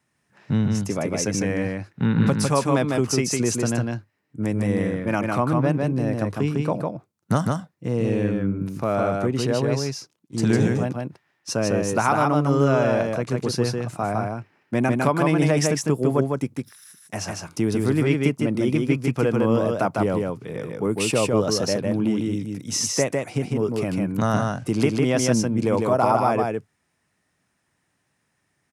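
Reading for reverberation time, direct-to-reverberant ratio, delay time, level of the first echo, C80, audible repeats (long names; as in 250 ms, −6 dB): no reverb audible, no reverb audible, 153 ms, −3.0 dB, no reverb audible, 1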